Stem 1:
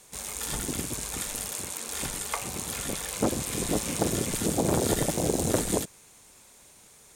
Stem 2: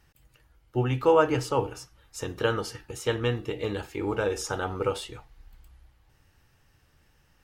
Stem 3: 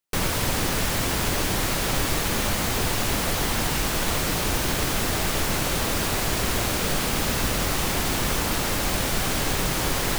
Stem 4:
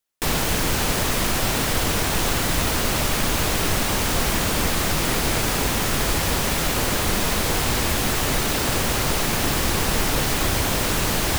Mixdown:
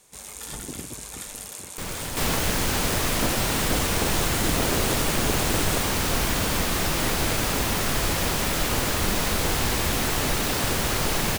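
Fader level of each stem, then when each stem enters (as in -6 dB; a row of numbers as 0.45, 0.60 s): -3.5 dB, off, -9.0 dB, -3.0 dB; 0.00 s, off, 1.65 s, 1.95 s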